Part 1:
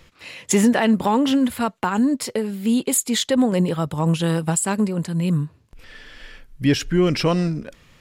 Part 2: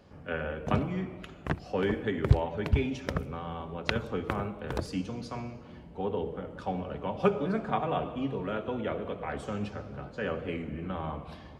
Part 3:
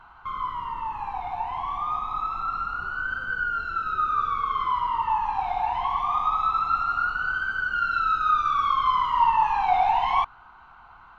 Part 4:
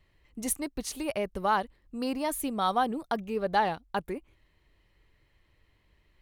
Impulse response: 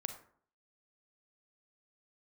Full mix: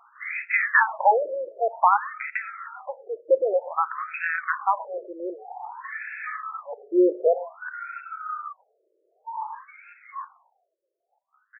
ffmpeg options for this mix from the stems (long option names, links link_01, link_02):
-filter_complex "[0:a]tiltshelf=frequency=730:gain=-7.5,volume=2.5dB,asplit=3[link_01][link_02][link_03];[link_02]volume=-6.5dB[link_04];[1:a]highpass=frequency=1500:width=0.5412,highpass=frequency=1500:width=1.3066,adelay=1350,volume=-7dB[link_05];[2:a]volume=-13dB,asplit=2[link_06][link_07];[link_07]volume=-10dB[link_08];[3:a]aeval=exprs='(mod(9.44*val(0)+1,2)-1)/9.44':channel_layout=same,volume=-9.5dB[link_09];[link_03]apad=whole_len=274250[link_10];[link_09][link_10]sidechaincompress=threshold=-27dB:ratio=8:attack=16:release=219[link_11];[4:a]atrim=start_sample=2205[link_12];[link_04][link_08]amix=inputs=2:normalize=0[link_13];[link_13][link_12]afir=irnorm=-1:irlink=0[link_14];[link_01][link_05][link_06][link_11][link_14]amix=inputs=5:normalize=0,afftfilt=real='re*between(b*sr/1024,440*pow(1900/440,0.5+0.5*sin(2*PI*0.53*pts/sr))/1.41,440*pow(1900/440,0.5+0.5*sin(2*PI*0.53*pts/sr))*1.41)':imag='im*between(b*sr/1024,440*pow(1900/440,0.5+0.5*sin(2*PI*0.53*pts/sr))/1.41,440*pow(1900/440,0.5+0.5*sin(2*PI*0.53*pts/sr))*1.41)':win_size=1024:overlap=0.75"